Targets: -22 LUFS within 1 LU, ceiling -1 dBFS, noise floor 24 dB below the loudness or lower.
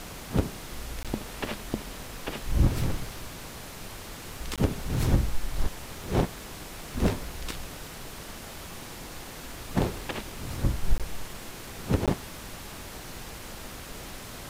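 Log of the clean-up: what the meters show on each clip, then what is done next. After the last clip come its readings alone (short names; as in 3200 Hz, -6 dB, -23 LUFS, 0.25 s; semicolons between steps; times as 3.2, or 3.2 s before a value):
dropouts 4; longest dropout 17 ms; noise floor -42 dBFS; noise floor target -58 dBFS; loudness -33.5 LUFS; peak -11.5 dBFS; loudness target -22.0 LUFS
-> interpolate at 1.03/4.56/10.98/12.06, 17 ms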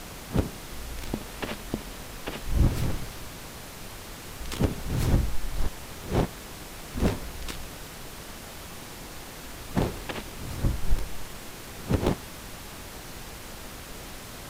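dropouts 0; noise floor -42 dBFS; noise floor target -58 dBFS
-> noise print and reduce 16 dB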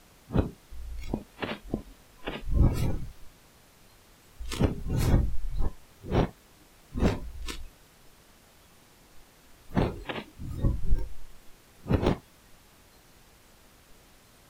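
noise floor -58 dBFS; loudness -31.5 LUFS; peak -11.0 dBFS; loudness target -22.0 LUFS
-> gain +9.5 dB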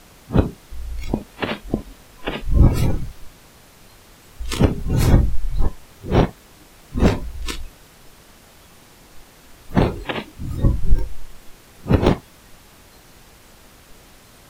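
loudness -22.0 LUFS; peak -1.5 dBFS; noise floor -48 dBFS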